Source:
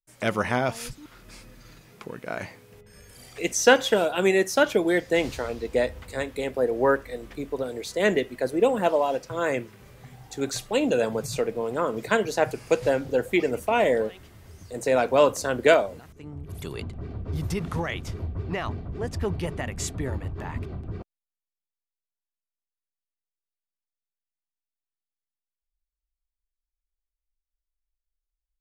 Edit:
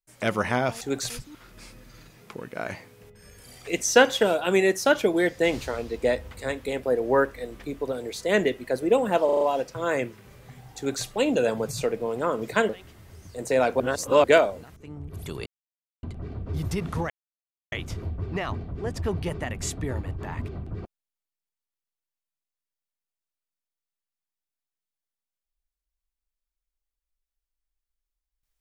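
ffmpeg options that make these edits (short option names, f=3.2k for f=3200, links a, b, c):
-filter_complex "[0:a]asplit=12[a][b][c][d][e][f][g][h][i][j][k][l];[a]atrim=end=0.812[m];[b]atrim=start=10.318:end=10.612[n];[c]atrim=start=0.808:end=9.002[o];[d]atrim=start=8.958:end=9.002[p];[e]atrim=start=8.958:end=9.002[q];[f]atrim=start=8.958:end=9.002[r];[g]atrim=start=8.958:end=12.242[s];[h]atrim=start=14.048:end=15.162[t];[i]atrim=start=15.158:end=15.602,asetpts=PTS-STARTPTS,areverse[u];[j]atrim=start=15.598:end=16.82,asetpts=PTS-STARTPTS,afade=t=out:st=1.218:d=0.004:c=hsin,apad=pad_dur=0.57[v];[k]atrim=start=16.82:end=17.89,asetpts=PTS-STARTPTS,afade=t=in:d=0.004:c=hsin,afade=t=out:st=1.066:d=0.004:c=hsin,apad=pad_dur=0.62[w];[l]atrim=start=17.89,asetpts=PTS-STARTPTS,afade=t=in:d=0.004:c=hsin[x];[m][n]acrossfade=d=0.004:c1=hsin:c2=hsin[y];[y][o]acrossfade=d=0.004:c1=hsin:c2=hsin[z];[z][p]acrossfade=d=0.004:c1=hsin:c2=hsin[aa];[aa][q]acrossfade=d=0.004:c1=hsin:c2=hsin[ab];[ab][r]acrossfade=d=0.004:c1=hsin:c2=hsin[ac];[ac][s]acrossfade=d=0.004:c1=hsin:c2=hsin[ad];[ad][t]acrossfade=d=0.004:c1=hsin:c2=hsin[ae];[ae][u]acrossfade=d=0.004:c1=hsin:c2=hsin[af];[v][w][x]concat=n=3:v=0:a=1[ag];[af][ag]acrossfade=d=0.004:c1=hsin:c2=hsin"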